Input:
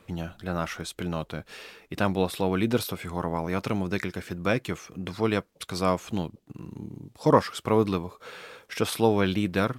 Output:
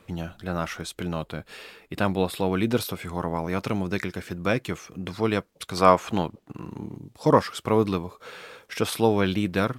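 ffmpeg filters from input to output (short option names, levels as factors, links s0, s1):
-filter_complex "[0:a]asettb=1/sr,asplit=3[s0][s1][s2];[s0]atrim=end=1.134[s3];[s1]atrim=start=1.13:end=2.42,asetpts=PTS-STARTPTS,afade=t=in:d=0.004:c=qsin,afade=t=out:st=1.286:d=0.004:c=qsin,bandreject=f=5900:w=6.2[s4];[s2]atrim=start=2.416[s5];[s3][s4]acrossfade=d=0.004:c1=hsin:c2=qsin[s6];[s6][s5]acrossfade=d=0.004:c1=qsin:c2=hsin,asettb=1/sr,asplit=3[s7][s8][s9];[s7]atrim=end=5.774[s10];[s8]atrim=start=5.77:end=6.97,asetpts=PTS-STARTPTS,afade=t=in:d=0.004:c=qsin,afade=t=out:st=1.196:d=0.004:c=qsin,equalizer=f=1100:w=0.46:g=9.5[s11];[s9]atrim=start=6.966[s12];[s10][s11]acrossfade=d=0.004:c1=hsin:c2=qsin[s13];[s13][s12]acrossfade=d=0.004:c1=qsin:c2=hsin,volume=1.12"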